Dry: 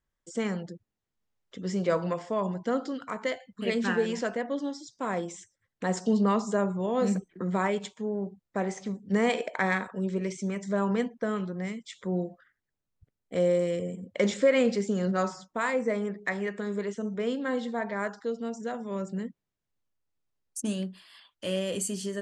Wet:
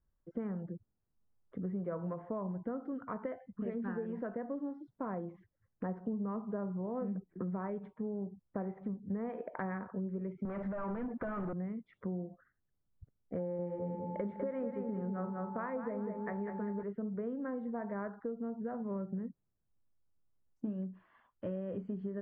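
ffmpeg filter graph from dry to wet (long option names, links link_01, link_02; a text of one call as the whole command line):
ffmpeg -i in.wav -filter_complex "[0:a]asettb=1/sr,asplit=3[link_01][link_02][link_03];[link_01]atrim=end=10.454[link_04];[link_02]atrim=start=10.45:end=11.53,asetpts=PTS-STARTPTS,afade=type=in:duration=0.004:curve=qsin,afade=type=out:start_time=1.076:duration=0.004:curve=qsin,aecho=1:1:3.4:0.41,atrim=end_sample=47628,acompressor=threshold=-36dB:ratio=6:attack=3.2:release=140:knee=1:detection=peak,asplit=2[link_05][link_06];[link_06]highpass=frequency=720:poles=1,volume=31dB,asoftclip=type=tanh:threshold=-23.5dB[link_07];[link_05][link_07]amix=inputs=2:normalize=0,lowpass=frequency=7300:poles=1,volume=-6dB[link_08];[link_03]atrim=start=11.526[link_09];[link_04][link_08]acrossfade=duration=0.004:curve1=hsin:curve2=qsin[link_10];[link_10][link_09]acrossfade=duration=0.004:curve1=qsin:curve2=hsin,asettb=1/sr,asplit=3[link_11][link_12][link_13];[link_11]atrim=end=13.394[link_14];[link_12]atrim=start=13.39:end=16.83,asetpts=PTS-STARTPTS,afade=type=in:duration=0.004:curve=qsin,afade=type=out:start_time=3.436:duration=0.004:curve=qsin,aeval=exprs='val(0)+0.00891*sin(2*PI*870*n/s)':channel_layout=same,aecho=1:1:199|398|597|796:0.501|0.155|0.0482|0.0149,atrim=end_sample=151704[link_15];[link_13]atrim=start=16.826[link_16];[link_14][link_15]acrossfade=duration=0.004:curve1=hsin:curve2=qsin[link_17];[link_17][link_16]acrossfade=duration=0.004:curve1=qsin:curve2=hsin,lowpass=frequency=1500:width=0.5412,lowpass=frequency=1500:width=1.3066,lowshelf=frequency=230:gain=10,acompressor=threshold=-32dB:ratio=6,volume=-3.5dB" out.wav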